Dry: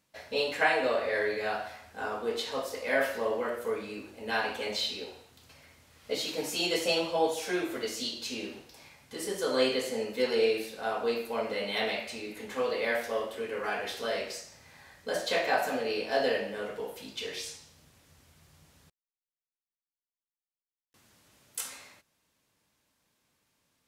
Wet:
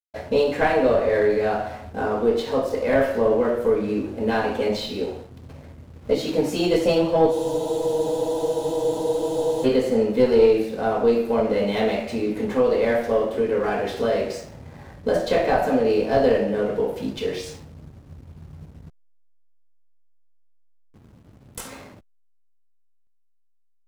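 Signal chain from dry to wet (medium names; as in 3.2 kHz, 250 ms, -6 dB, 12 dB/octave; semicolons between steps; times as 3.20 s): single-diode clipper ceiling -20 dBFS; in parallel at +2.5 dB: compression, threshold -39 dBFS, peak gain reduction 16 dB; on the sum: tilt shelf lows +9 dB, about 830 Hz; hysteresis with a dead band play -46.5 dBFS; spectral freeze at 7.33 s, 2.31 s; trim +5.5 dB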